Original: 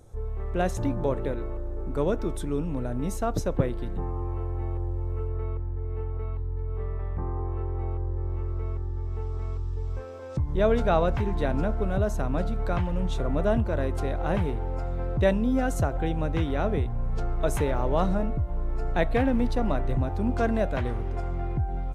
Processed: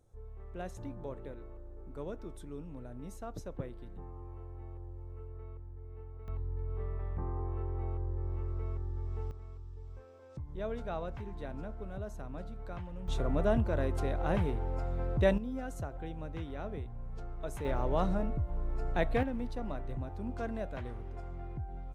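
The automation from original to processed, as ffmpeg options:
ffmpeg -i in.wav -af "asetnsamples=nb_out_samples=441:pad=0,asendcmd='6.28 volume volume -6dB;9.31 volume volume -15.5dB;13.08 volume volume -4.5dB;15.38 volume volume -14dB;17.65 volume volume -6dB;19.23 volume volume -12.5dB',volume=-15.5dB" out.wav

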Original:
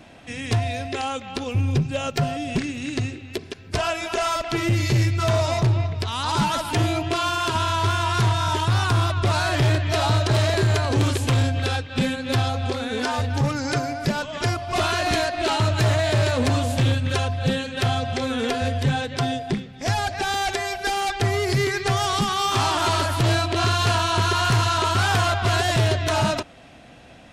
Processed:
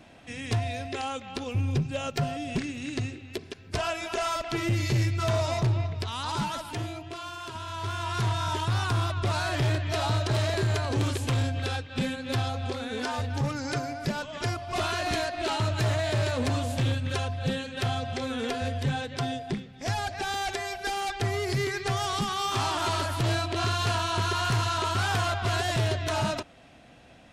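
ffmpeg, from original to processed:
ffmpeg -i in.wav -af "volume=3dB,afade=type=out:start_time=5.98:duration=1.03:silence=0.334965,afade=type=in:start_time=7.63:duration=0.71:silence=0.375837" out.wav

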